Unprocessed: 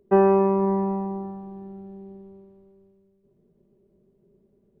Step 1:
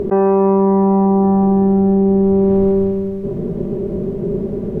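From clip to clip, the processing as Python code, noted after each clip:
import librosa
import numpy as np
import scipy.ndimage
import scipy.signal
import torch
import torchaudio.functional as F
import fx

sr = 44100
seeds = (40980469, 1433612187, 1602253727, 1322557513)

y = fx.lowpass(x, sr, hz=1400.0, slope=6)
y = fx.env_flatten(y, sr, amount_pct=100)
y = y * librosa.db_to_amplitude(2.0)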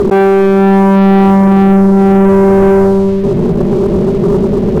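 y = fx.leveller(x, sr, passes=3)
y = y * librosa.db_to_amplitude(1.0)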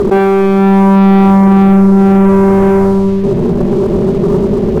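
y = x + 10.0 ** (-9.5 / 20.0) * np.pad(x, (int(71 * sr / 1000.0), 0))[:len(x)]
y = y * librosa.db_to_amplitude(-1.0)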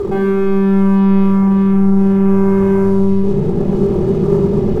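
y = fx.rider(x, sr, range_db=10, speed_s=2.0)
y = fx.room_shoebox(y, sr, seeds[0], volume_m3=2300.0, walls='furnished', distance_m=4.0)
y = y * librosa.db_to_amplitude(-12.5)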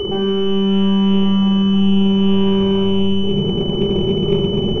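y = x + 10.0 ** (-12.5 / 20.0) * np.pad(x, (int(1136 * sr / 1000.0), 0))[:len(x)]
y = fx.pwm(y, sr, carrier_hz=3000.0)
y = y * librosa.db_to_amplitude(-3.5)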